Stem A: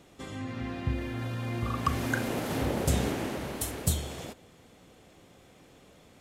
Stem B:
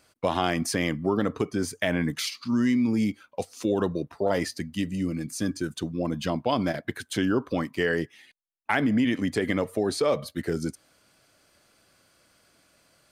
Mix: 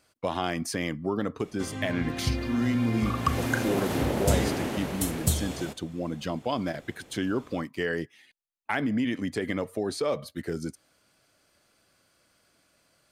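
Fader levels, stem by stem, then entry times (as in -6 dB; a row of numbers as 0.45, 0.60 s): +2.5, -4.0 dB; 1.40, 0.00 s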